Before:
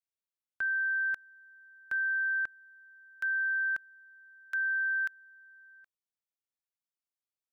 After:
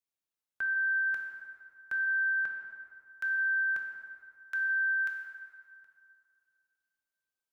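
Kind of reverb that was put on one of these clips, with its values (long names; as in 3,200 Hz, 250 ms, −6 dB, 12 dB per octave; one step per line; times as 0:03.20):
dense smooth reverb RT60 2.3 s, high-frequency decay 0.6×, DRR 1.5 dB
level −1 dB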